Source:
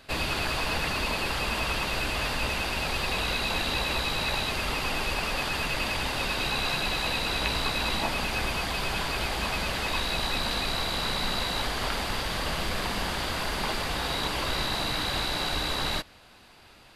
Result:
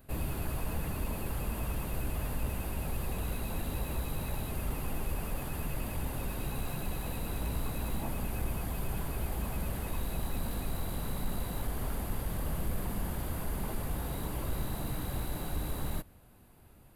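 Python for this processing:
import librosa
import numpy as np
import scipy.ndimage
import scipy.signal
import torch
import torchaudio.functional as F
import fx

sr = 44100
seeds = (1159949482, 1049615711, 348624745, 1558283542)

y = 10.0 ** (-23.5 / 20.0) * np.tanh(x / 10.0 ** (-23.5 / 20.0))
y = fx.curve_eq(y, sr, hz=(130.0, 4900.0, 13000.0), db=(0, -24, 3))
y = y * 10.0 ** (2.5 / 20.0)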